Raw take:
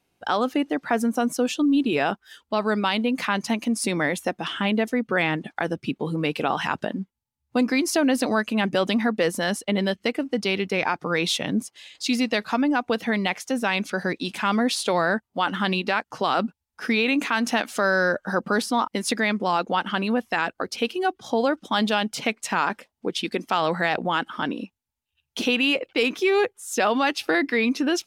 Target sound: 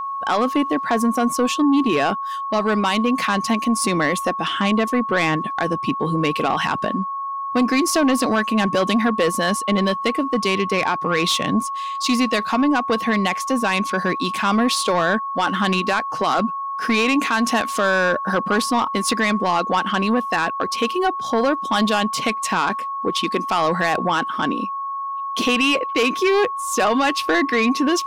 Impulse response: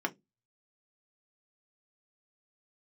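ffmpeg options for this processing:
-af "aeval=exprs='0.376*(cos(1*acos(clip(val(0)/0.376,-1,1)))-cos(1*PI/2))+0.0668*(cos(5*acos(clip(val(0)/0.376,-1,1)))-cos(5*PI/2))':c=same,aeval=exprs='val(0)+0.0631*sin(2*PI*1100*n/s)':c=same"

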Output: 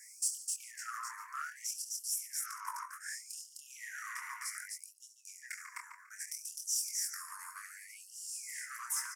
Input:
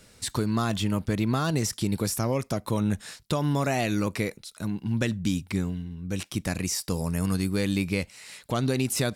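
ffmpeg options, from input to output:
-filter_complex "[0:a]asuperstop=centerf=3300:order=8:qfactor=0.96,highshelf=f=2.1k:g=-7.5,acompressor=threshold=-36dB:ratio=3,asplit=2[a][b];[b]adelay=144,lowpass=f=2.8k:p=1,volume=-5dB,asplit=2[c][d];[d]adelay=144,lowpass=f=2.8k:p=1,volume=0.29,asplit=2[e][f];[f]adelay=144,lowpass=f=2.8k:p=1,volume=0.29,asplit=2[g][h];[h]adelay=144,lowpass=f=2.8k:p=1,volume=0.29[i];[c][e][g][i]amix=inputs=4:normalize=0[j];[a][j]amix=inputs=2:normalize=0,alimiter=level_in=8.5dB:limit=-24dB:level=0:latency=1:release=78,volume=-8.5dB,highpass=110,asplit=2[k][l];[l]aecho=0:1:69.97|256.6:0.282|0.794[m];[k][m]amix=inputs=2:normalize=0,flanger=delay=20:depth=7.6:speed=0.41,asoftclip=type=tanh:threshold=-35dB,asubboost=boost=11:cutoff=240,afftfilt=real='re*gte(b*sr/1024,880*pow(2800/880,0.5+0.5*sin(2*PI*0.64*pts/sr)))':imag='im*gte(b*sr/1024,880*pow(2800/880,0.5+0.5*sin(2*PI*0.64*pts/sr)))':win_size=1024:overlap=0.75,volume=16.5dB"

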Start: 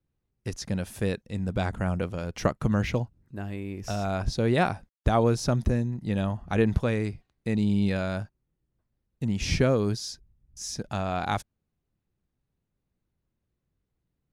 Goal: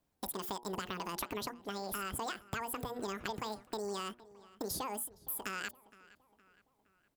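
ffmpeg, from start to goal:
-filter_complex "[0:a]bass=f=250:g=-8,treble=f=4k:g=7,bandreject=f=60:t=h:w=6,bandreject=f=120:t=h:w=6,bandreject=f=180:t=h:w=6,bandreject=f=240:t=h:w=6,bandreject=f=300:t=h:w=6,bandreject=f=360:t=h:w=6,bandreject=f=420:t=h:w=6,bandreject=f=480:t=h:w=6,acompressor=threshold=-40dB:ratio=16,asplit=2[a][b];[b]adelay=931,lowpass=f=1.9k:p=1,volume=-20dB,asplit=2[c][d];[d]adelay=931,lowpass=f=1.9k:p=1,volume=0.5,asplit=2[e][f];[f]adelay=931,lowpass=f=1.9k:p=1,volume=0.5,asplit=2[g][h];[h]adelay=931,lowpass=f=1.9k:p=1,volume=0.5[i];[a][c][e][g][i]amix=inputs=5:normalize=0,asetrate=88200,aresample=44100,volume=4.5dB"

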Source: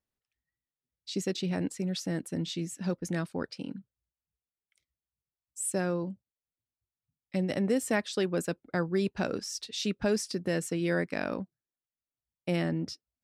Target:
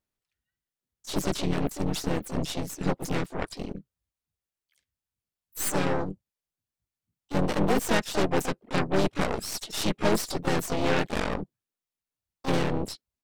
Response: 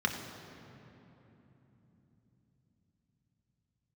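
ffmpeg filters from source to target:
-filter_complex "[0:a]asplit=4[a][b][c][d];[b]asetrate=35002,aresample=44100,atempo=1.25992,volume=-5dB[e];[c]asetrate=66075,aresample=44100,atempo=0.66742,volume=-5dB[f];[d]asetrate=88200,aresample=44100,atempo=0.5,volume=-15dB[g];[a][e][f][g]amix=inputs=4:normalize=0,aeval=exprs='0.251*(cos(1*acos(clip(val(0)/0.251,-1,1)))-cos(1*PI/2))+0.0501*(cos(8*acos(clip(val(0)/0.251,-1,1)))-cos(8*PI/2))':c=same"

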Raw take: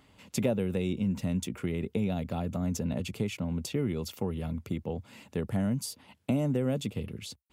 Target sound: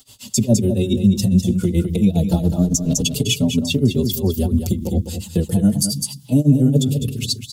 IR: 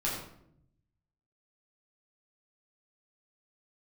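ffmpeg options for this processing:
-filter_complex "[0:a]acrossover=split=430[a][b];[b]acompressor=threshold=-49dB:ratio=2[c];[a][c]amix=inputs=2:normalize=0,asplit=2[d][e];[1:a]atrim=start_sample=2205,lowshelf=f=190:g=11.5[f];[e][f]afir=irnorm=-1:irlink=0,volume=-26.5dB[g];[d][g]amix=inputs=2:normalize=0,asettb=1/sr,asplit=3[h][i][j];[h]atrim=end=2.274[k];[i]atrim=start=2.27:end=3.06,asetpts=PTS-STARTPTS,afade=t=in:d=0.004:c=qsin,afade=t=out:st=0.786:d=0.004:c=qsin,volume=29dB,asoftclip=hard,volume=-29dB[l];[j]atrim=start=3.056[m];[k][l]acrossfade=d=0.004:c1=hsin:c2=qsin[n];[n][m]acrossfade=d=0.004:c1=qsin:c2=hsin,afftdn=nr=14:nf=-42,aexciter=amount=13.8:drive=4.5:freq=3.3k,tremolo=f=7.2:d=0.96,acompressor=threshold=-34dB:ratio=2,aecho=1:1:204:0.376,alimiter=level_in=26dB:limit=-1dB:release=50:level=0:latency=1,asplit=2[o][p];[p]adelay=4.7,afreqshift=-0.28[q];[o][q]amix=inputs=2:normalize=1,volume=-2.5dB"

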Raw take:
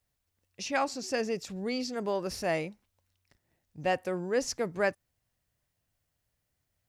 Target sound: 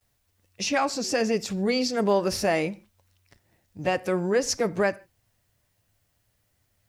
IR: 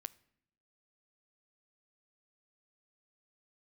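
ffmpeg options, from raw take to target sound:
-filter_complex "[0:a]alimiter=limit=-23dB:level=0:latency=1:release=151,asplit=2[a][b];[1:a]atrim=start_sample=2205,afade=t=out:st=0.21:d=0.01,atrim=end_sample=9702,adelay=10[c];[b][c]afir=irnorm=-1:irlink=0,volume=15dB[d];[a][d]amix=inputs=2:normalize=0,volume=-2dB"

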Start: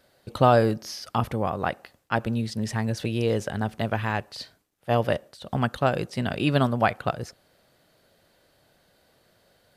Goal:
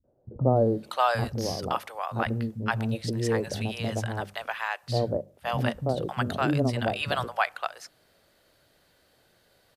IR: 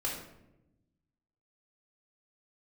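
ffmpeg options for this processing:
-filter_complex "[0:a]bandreject=f=50:t=h:w=6,bandreject=f=100:t=h:w=6,bandreject=f=150:t=h:w=6,bandreject=f=200:t=h:w=6,acrossover=split=200|690[a][b][c];[b]adelay=40[d];[c]adelay=560[e];[a][d][e]amix=inputs=3:normalize=0"

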